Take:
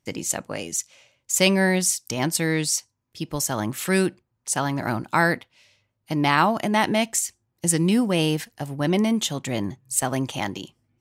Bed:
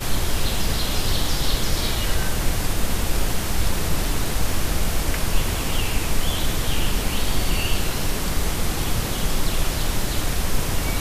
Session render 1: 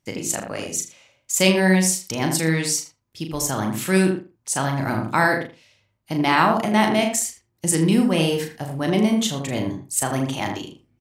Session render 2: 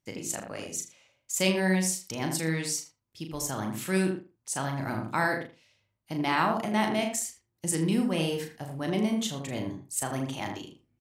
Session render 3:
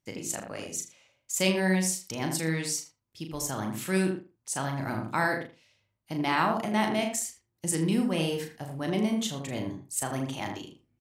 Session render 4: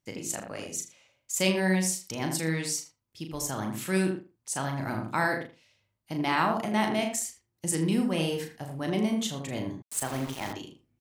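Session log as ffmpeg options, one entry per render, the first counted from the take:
-filter_complex "[0:a]asplit=2[s0][s1];[s1]adelay=37,volume=0.501[s2];[s0][s2]amix=inputs=2:normalize=0,asplit=2[s3][s4];[s4]adelay=80,lowpass=f=1400:p=1,volume=0.631,asplit=2[s5][s6];[s6]adelay=80,lowpass=f=1400:p=1,volume=0.18,asplit=2[s7][s8];[s8]adelay=80,lowpass=f=1400:p=1,volume=0.18[s9];[s5][s7][s9]amix=inputs=3:normalize=0[s10];[s3][s10]amix=inputs=2:normalize=0"
-af "volume=0.376"
-af anull
-filter_complex "[0:a]asettb=1/sr,asplit=3[s0][s1][s2];[s0]atrim=end=9.824[s3];[s1]atrim=start=9.82:end=10.53,asetpts=PTS-STARTPTS,afade=t=in:d=0.004:c=qsin,afade=t=out:st=0.706:d=0.004:c=qsin,aeval=exprs='val(0)*gte(abs(val(0)),0.0168)':c=same[s4];[s2]atrim=start=10.526[s5];[s3][s4]acrossfade=d=0.004:c1=hsin:c2=qsin[s6];[s6][s5]acrossfade=d=0.004:c1=qsin:c2=hsin"

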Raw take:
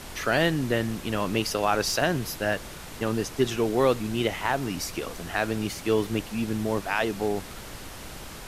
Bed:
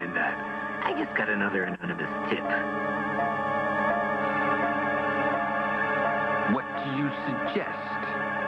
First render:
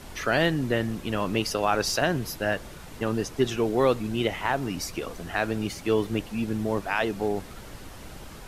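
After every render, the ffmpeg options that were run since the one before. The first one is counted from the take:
-af "afftdn=nr=6:nf=-41"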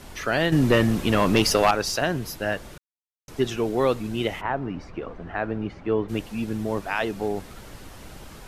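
-filter_complex "[0:a]asettb=1/sr,asplit=3[s0][s1][s2];[s0]atrim=end=0.524[s3];[s1]atrim=start=0.52:end=1.71,asetpts=PTS-STARTPTS,afade=t=in:d=0.004:c=qsin,afade=t=out:st=1.186:d=0.004:c=qsin,aeval=exprs='0.299*sin(PI/2*1.78*val(0)/0.299)':c=same[s4];[s2]atrim=start=1.706[s5];[s3][s4]acrossfade=d=0.004:c1=hsin:c2=qsin[s6];[s6][s5]acrossfade=d=0.004:c1=qsin:c2=hsin,asplit=3[s7][s8][s9];[s7]afade=t=out:st=4.4:d=0.02[s10];[s8]lowpass=1700,afade=t=in:st=4.4:d=0.02,afade=t=out:st=6.08:d=0.02[s11];[s9]afade=t=in:st=6.08:d=0.02[s12];[s10][s11][s12]amix=inputs=3:normalize=0,asplit=3[s13][s14][s15];[s13]atrim=end=2.78,asetpts=PTS-STARTPTS,afade=t=out:st=2.776:d=0.004:c=hsin[s16];[s14]atrim=start=2.78:end=3.28,asetpts=PTS-STARTPTS,volume=0[s17];[s15]atrim=start=3.28,asetpts=PTS-STARTPTS,afade=t=in:d=0.004:c=hsin[s18];[s16][s17][s18]concat=n=3:v=0:a=1"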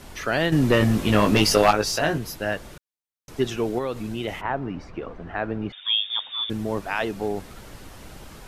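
-filter_complex "[0:a]asettb=1/sr,asplit=3[s0][s1][s2];[s0]atrim=end=0.794[s3];[s1]atrim=start=0.79:end=2.18,asetpts=PTS-STARTPTS,afade=t=in:d=0.004:c=qsin,afade=t=out:st=1.386:d=0.004:c=qsin,asplit=2[s4][s5];[s5]adelay=19,volume=0.631[s6];[s4][s6]amix=inputs=2:normalize=0,atrim=end_sample=61299[s7];[s2]atrim=start=2.176[s8];[s3][s7]acrossfade=d=0.004:c1=hsin:c2=qsin[s9];[s9][s8]acrossfade=d=0.004:c1=qsin:c2=hsin,asettb=1/sr,asplit=3[s10][s11][s12];[s10]atrim=end=3.784[s13];[s11]atrim=start=3.78:end=4.28,asetpts=PTS-STARTPTS,afade=t=in:d=0.004:c=qsin,afade=t=out:st=0.496:d=0.004:c=qsin,acompressor=threshold=0.0562:ratio=3:attack=3.2:release=140:knee=1:detection=peak[s14];[s12]atrim=start=4.276[s15];[s13][s14]acrossfade=d=0.004:c1=hsin:c2=qsin[s16];[s16][s15]acrossfade=d=0.004:c1=qsin:c2=hsin,asettb=1/sr,asplit=3[s17][s18][s19];[s17]atrim=end=5.724[s20];[s18]atrim=start=5.72:end=6.5,asetpts=PTS-STARTPTS,afade=t=in:d=0.004:c=qsin,afade=t=out:st=0.776:d=0.004:c=qsin,lowpass=f=3100:t=q:w=0.5098,lowpass=f=3100:t=q:w=0.6013,lowpass=f=3100:t=q:w=0.9,lowpass=f=3100:t=q:w=2.563,afreqshift=-3700[s21];[s19]atrim=start=6.496[s22];[s20][s21]acrossfade=d=0.004:c1=hsin:c2=qsin[s23];[s23][s22]acrossfade=d=0.004:c1=qsin:c2=hsin"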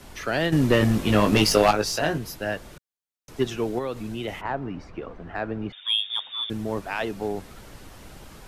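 -filter_complex "[0:a]acrossover=split=180|1100|1900[s0][s1][s2][s3];[s2]asoftclip=type=tanh:threshold=0.0335[s4];[s0][s1][s4][s3]amix=inputs=4:normalize=0,aeval=exprs='0.596*(cos(1*acos(clip(val(0)/0.596,-1,1)))-cos(1*PI/2))+0.0188*(cos(7*acos(clip(val(0)/0.596,-1,1)))-cos(7*PI/2))':c=same"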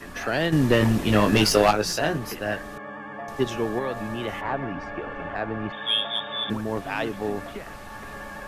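-filter_complex "[1:a]volume=0.355[s0];[0:a][s0]amix=inputs=2:normalize=0"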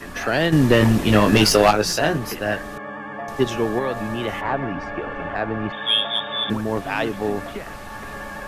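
-af "volume=1.68,alimiter=limit=0.708:level=0:latency=1"

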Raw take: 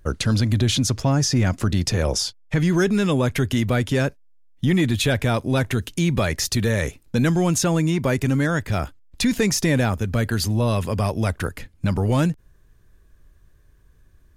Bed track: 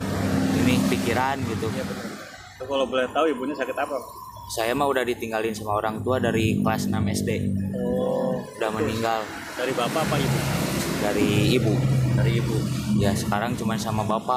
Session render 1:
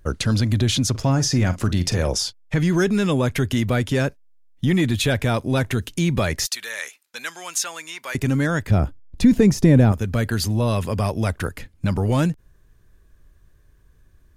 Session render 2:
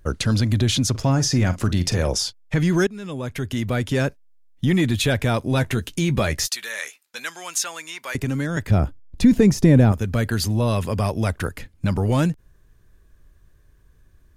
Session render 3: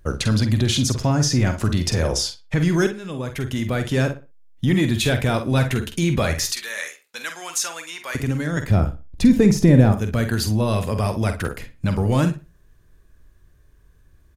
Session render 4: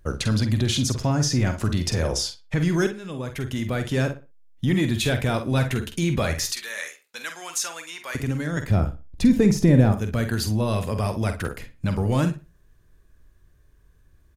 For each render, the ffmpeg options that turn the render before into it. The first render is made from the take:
-filter_complex "[0:a]asettb=1/sr,asplit=3[s0][s1][s2];[s0]atrim=end=0.904[s3];[s1]atrim=start=0.9:end=2.08,asetpts=PTS-STARTPTS,afade=t=in:d=0.004:c=qsin,afade=t=out:st=1.176:d=0.004:c=qsin,asplit=2[s4][s5];[s5]adelay=45,volume=0.2[s6];[s4][s6]amix=inputs=2:normalize=0,atrim=end_sample=52038[s7];[s2]atrim=start=2.076[s8];[s3][s7]acrossfade=d=0.004:c1=hsin:c2=qsin[s9];[s9][s8]acrossfade=d=0.004:c1=qsin:c2=hsin,asettb=1/sr,asplit=3[s10][s11][s12];[s10]atrim=end=6.464[s13];[s11]atrim=start=6.46:end=8.15,asetpts=PTS-STARTPTS,afade=t=in:d=0.004:c=qsin,afade=t=out:st=1.686:d=0.004:c=qsin,highpass=1300[s14];[s12]atrim=start=8.146[s15];[s13][s14]acrossfade=d=0.004:c1=hsin:c2=qsin[s16];[s16][s15]acrossfade=d=0.004:c1=qsin:c2=hsin,asettb=1/sr,asplit=3[s17][s18][s19];[s17]atrim=end=8.714[s20];[s18]atrim=start=8.71:end=9.92,asetpts=PTS-STARTPTS,afade=t=in:d=0.004:c=qsin,afade=t=out:st=1.206:d=0.004:c=qsin,tiltshelf=f=790:g=8[s21];[s19]atrim=start=9.916[s22];[s20][s21]acrossfade=d=0.004:c1=hsin:c2=qsin[s23];[s23][s22]acrossfade=d=0.004:c1=qsin:c2=hsin"
-filter_complex "[0:a]asettb=1/sr,asplit=3[s0][s1][s2];[s0]atrim=end=5.504[s3];[s1]atrim=start=5.5:end=7.2,asetpts=PTS-STARTPTS,afade=t=in:d=0.004:c=qsin,afade=t=out:st=1.696:d=0.004:c=qsin,asplit=2[s4][s5];[s5]adelay=14,volume=0.282[s6];[s4][s6]amix=inputs=2:normalize=0,atrim=end_sample=74970[s7];[s2]atrim=start=7.196[s8];[s3][s7]acrossfade=d=0.004:c1=hsin:c2=qsin[s9];[s9][s8]acrossfade=d=0.004:c1=qsin:c2=hsin,asettb=1/sr,asplit=3[s10][s11][s12];[s10]atrim=end=8.154[s13];[s11]atrim=start=8.15:end=8.57,asetpts=PTS-STARTPTS,afade=t=in:d=0.004:c=qsin,afade=t=out:st=0.416:d=0.004:c=qsin,acrossover=split=440|1900[s14][s15][s16];[s14]acompressor=threshold=0.0794:ratio=4[s17];[s15]acompressor=threshold=0.0178:ratio=4[s18];[s16]acompressor=threshold=0.0141:ratio=4[s19];[s17][s18][s19]amix=inputs=3:normalize=0[s20];[s12]atrim=start=8.566[s21];[s13][s20]acrossfade=d=0.004:c1=hsin:c2=qsin[s22];[s22][s21]acrossfade=d=0.004:c1=qsin:c2=hsin,asplit=2[s23][s24];[s23]atrim=end=2.87,asetpts=PTS-STARTPTS,afade=t=out:st=2.866:d=0.004:c=hsin:silence=0.1[s25];[s24]atrim=start=2.87,asetpts=PTS-STARTPTS,afade=t=in:d=1.19:silence=0.1[s26];[s25][s26]concat=n=2:v=0:a=1"
-filter_complex "[0:a]asplit=2[s0][s1];[s1]adelay=47,volume=0.355[s2];[s0][s2]amix=inputs=2:normalize=0,asplit=2[s3][s4];[s4]adelay=61,lowpass=f=3100:p=1,volume=0.237,asplit=2[s5][s6];[s6]adelay=61,lowpass=f=3100:p=1,volume=0.27,asplit=2[s7][s8];[s8]adelay=61,lowpass=f=3100:p=1,volume=0.27[s9];[s3][s5][s7][s9]amix=inputs=4:normalize=0"
-af "volume=0.708"

